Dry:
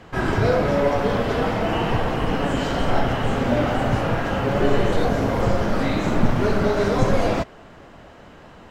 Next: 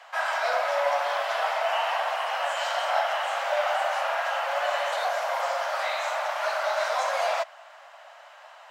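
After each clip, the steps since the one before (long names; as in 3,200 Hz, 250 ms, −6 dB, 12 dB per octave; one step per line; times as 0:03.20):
Butterworth high-pass 590 Hz 72 dB per octave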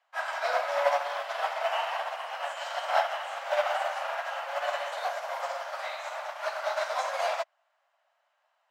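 expander for the loud parts 2.5 to 1, over −40 dBFS
level +2 dB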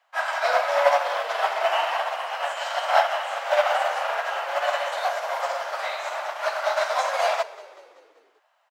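echo with shifted repeats 192 ms, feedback 55%, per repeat −47 Hz, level −19 dB
level +6.5 dB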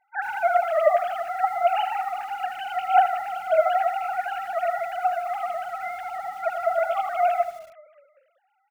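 three sine waves on the formant tracks
feedback echo at a low word length 80 ms, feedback 35%, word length 7 bits, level −11 dB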